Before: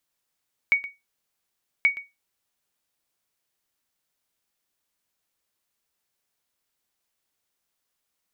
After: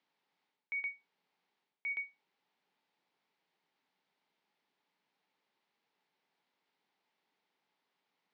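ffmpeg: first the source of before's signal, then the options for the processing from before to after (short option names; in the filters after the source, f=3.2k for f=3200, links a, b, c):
-f lavfi -i "aevalsrc='0.282*(sin(2*PI*2240*mod(t,1.13))*exp(-6.91*mod(t,1.13)/0.21)+0.15*sin(2*PI*2240*max(mod(t,1.13)-0.12,0))*exp(-6.91*max(mod(t,1.13)-0.12,0)/0.21))':d=2.26:s=44100"
-af "alimiter=limit=-22.5dB:level=0:latency=1,highpass=f=150:w=0.5412,highpass=f=150:w=1.3066,equalizer=f=180:t=q:w=4:g=6,equalizer=f=270:t=q:w=4:g=4,equalizer=f=410:t=q:w=4:g=6,equalizer=f=860:t=q:w=4:g=10,equalizer=f=2.1k:t=q:w=4:g=4,lowpass=f=4.3k:w=0.5412,lowpass=f=4.3k:w=1.3066,areverse,acompressor=threshold=-36dB:ratio=12,areverse"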